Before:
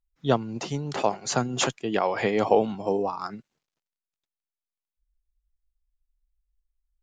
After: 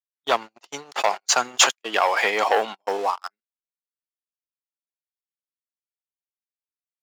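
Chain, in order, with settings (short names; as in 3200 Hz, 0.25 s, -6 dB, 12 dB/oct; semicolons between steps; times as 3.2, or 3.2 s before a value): gate -29 dBFS, range -31 dB; sample leveller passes 2; HPF 910 Hz 12 dB/oct; gain +4 dB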